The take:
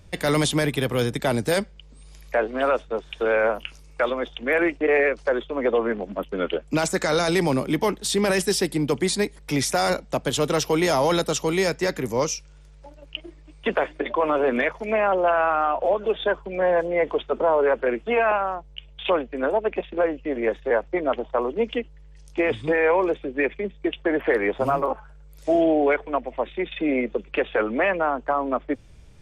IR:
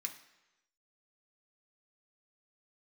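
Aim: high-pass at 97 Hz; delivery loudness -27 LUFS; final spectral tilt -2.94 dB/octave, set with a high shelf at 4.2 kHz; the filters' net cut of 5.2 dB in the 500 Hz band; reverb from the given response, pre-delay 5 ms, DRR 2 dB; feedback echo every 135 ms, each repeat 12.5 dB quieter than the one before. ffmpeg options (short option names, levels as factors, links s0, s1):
-filter_complex "[0:a]highpass=97,equalizer=f=500:t=o:g=-6.5,highshelf=f=4200:g=3.5,aecho=1:1:135|270|405:0.237|0.0569|0.0137,asplit=2[s0][s1];[1:a]atrim=start_sample=2205,adelay=5[s2];[s1][s2]afir=irnorm=-1:irlink=0,volume=0.944[s3];[s0][s3]amix=inputs=2:normalize=0,volume=0.708"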